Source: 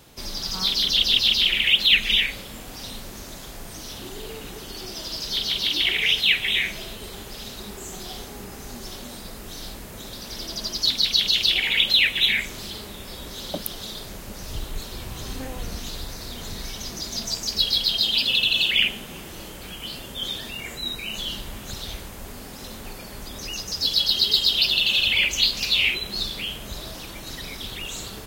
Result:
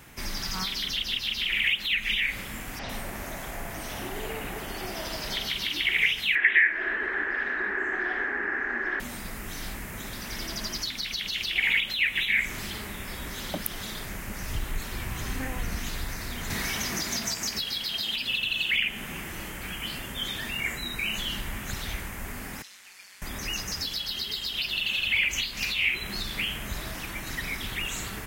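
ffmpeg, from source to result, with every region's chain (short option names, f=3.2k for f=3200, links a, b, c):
-filter_complex "[0:a]asettb=1/sr,asplit=3[a][b][c];[a]atrim=end=2.794[d];[b]atrim=start=2.79:end=5.47,asetpts=PTS-STARTPTS,afade=t=in:d=0.004:c=qsin,afade=t=out:st=2.676:d=0.004:c=qsin,equalizer=f=650:w=1.4:g=9,acrossover=split=5800[e][f];[f]adelay=100[g];[e][g]amix=inputs=2:normalize=0,atrim=end_sample=118188[h];[c]atrim=start=5.466[i];[d][h]acrossfade=d=0.004:c1=hsin:c2=qsin[j];[j][i]acrossfade=d=0.004:c1=qsin:c2=hsin,asettb=1/sr,asplit=3[k][l][m];[k]atrim=end=6.354[n];[l]atrim=start=6.35:end=9,asetpts=PTS-STARTPTS,afade=t=in:d=0.004:c=qsin,afade=t=out:st=2.646:d=0.004:c=qsin,lowpass=f=1.7k:t=q:w=11,lowshelf=f=220:t=q:w=3:g=-13.5[o];[m]atrim=start=8.996[p];[n][o]acrossfade=d=0.004:c1=hsin:c2=qsin[q];[q][p]acrossfade=d=0.004:c1=qsin:c2=hsin,asettb=1/sr,asplit=3[r][s][t];[r]atrim=end=16.504[u];[s]atrim=start=16.5:end=18.16,asetpts=PTS-STARTPTS,afade=t=in:d=0.004:c=qsin,afade=t=out:st=1.656:d=0.004:c=qsin,highpass=f=140:p=1,acontrast=48[v];[t]atrim=start=18.156[w];[u][v]acrossfade=d=0.004:c1=hsin:c2=qsin[x];[x][w]acrossfade=d=0.004:c1=qsin:c2=hsin,asettb=1/sr,asplit=3[y][z][aa];[y]atrim=end=22.624[ab];[z]atrim=start=22.62:end=23.22,asetpts=PTS-STARTPTS,afade=t=in:d=0.004:c=qsin,afade=t=out:st=0.596:d=0.004:c=qsin,bandpass=f=5k:t=q:w=1.2,tremolo=f=190:d=0.519[ac];[aa]atrim=start=23.216[ad];[ab][ac]acrossfade=d=0.004:c1=hsin:c2=qsin[ae];[ae][ad]acrossfade=d=0.004:c1=qsin:c2=hsin,acompressor=threshold=-25dB:ratio=6,equalizer=f=500:t=o:w=1:g=-6,equalizer=f=2k:t=o:w=1:g=9,equalizer=f=4k:t=o:w=1:g=-9,volume=1.5dB"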